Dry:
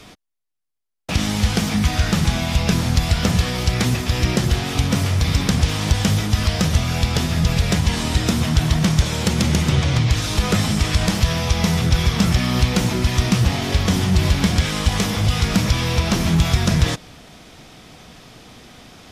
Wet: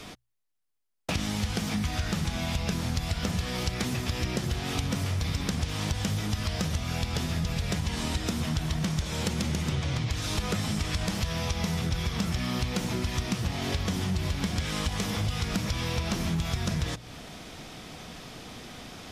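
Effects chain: hum notches 60/120 Hz; compression 4:1, threshold -28 dBFS, peak gain reduction 14.5 dB

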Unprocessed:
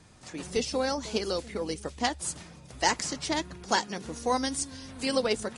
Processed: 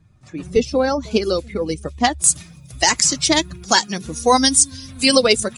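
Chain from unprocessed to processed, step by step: expander on every frequency bin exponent 1.5; treble shelf 3 kHz -11.5 dB, from 1.11 s -4 dB, from 2.24 s +8.5 dB; loudness maximiser +15.5 dB; trim -1 dB

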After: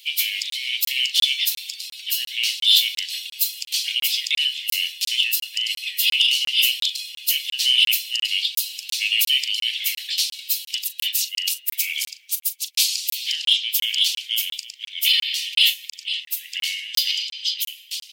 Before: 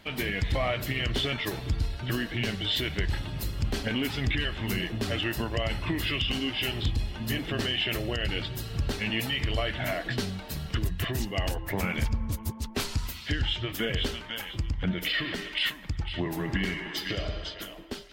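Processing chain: dynamic bell 4.9 kHz, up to +4 dB, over -44 dBFS, Q 1.1; steep high-pass 2.5 kHz 48 dB/octave; doubling 39 ms -13.5 dB; in parallel at -5.5 dB: saturation -25 dBFS, distortion -14 dB; on the sum: treble shelf 9.3 kHz +10.5 dB; crackling interface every 0.35 s, samples 1024, zero, from 0.50 s; trim +8 dB

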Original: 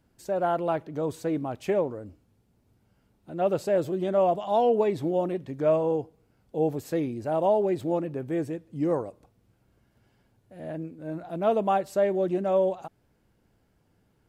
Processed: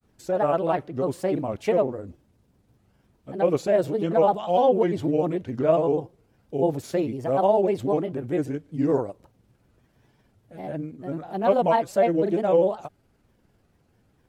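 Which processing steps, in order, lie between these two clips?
granulator, spray 18 ms, pitch spread up and down by 3 st; trim +4.5 dB

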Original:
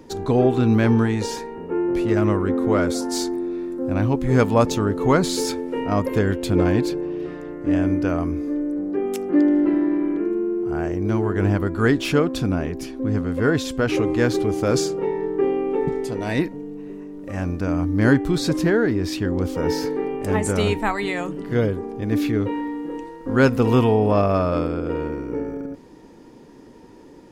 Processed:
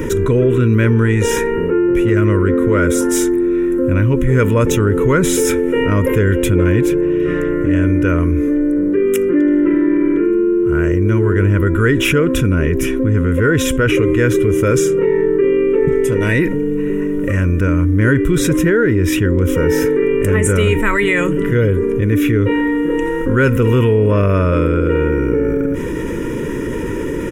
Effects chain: static phaser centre 1.9 kHz, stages 4; comb 2.1 ms, depth 42%; level flattener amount 70%; trim +4 dB

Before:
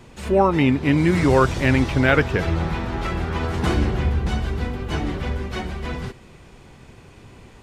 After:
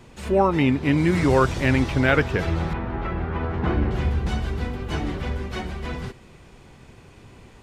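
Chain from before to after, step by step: 2.73–3.91 s: low-pass 2 kHz 12 dB/octave; trim -2 dB

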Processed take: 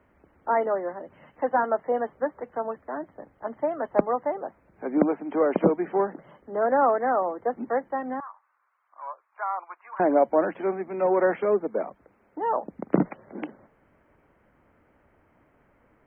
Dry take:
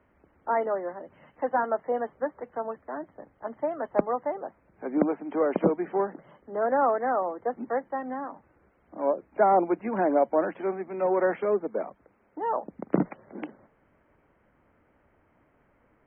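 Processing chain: 8.20–10.00 s: ladder high-pass 1 kHz, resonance 65%; trim +2.5 dB

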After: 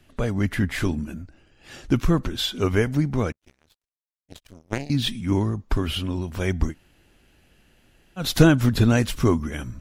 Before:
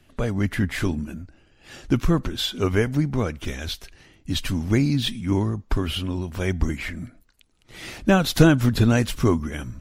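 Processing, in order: 3.32–4.90 s: power-law waveshaper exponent 3; 6.70–8.21 s: room tone, crossfade 0.10 s

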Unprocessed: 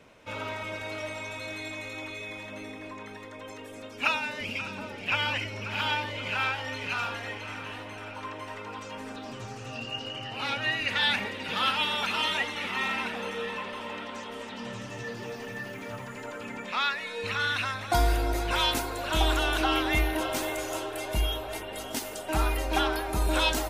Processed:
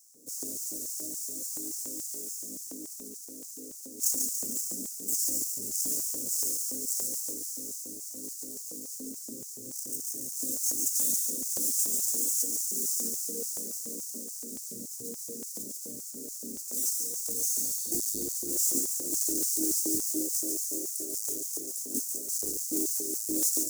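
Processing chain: square wave that keeps the level; elliptic band-stop 280–7100 Hz, stop band 50 dB; LFO high-pass square 3.5 Hz 500–5300 Hz; spectral replace 17.55–18.26 s, 1.9–4.7 kHz before; in parallel at -2.5 dB: compression, threshold -33 dBFS, peak gain reduction 9 dB; on the sum: dynamic bell 2.6 kHz, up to -4 dB, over -53 dBFS, Q 1.9; on a send: feedback echo behind a high-pass 142 ms, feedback 52%, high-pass 2.8 kHz, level -4 dB

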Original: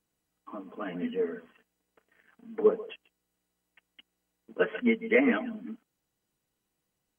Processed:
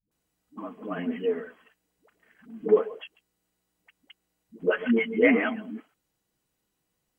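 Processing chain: phase dispersion highs, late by 115 ms, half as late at 330 Hz; trim +3 dB

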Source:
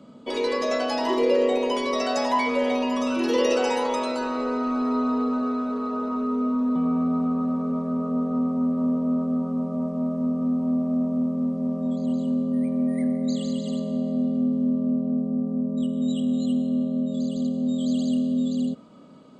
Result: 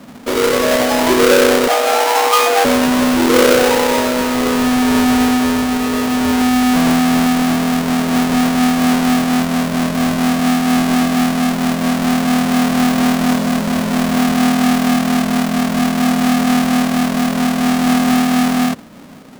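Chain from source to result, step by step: square wave that keeps the level; 1.68–2.65 s: frequency shift +230 Hz; trim +6.5 dB

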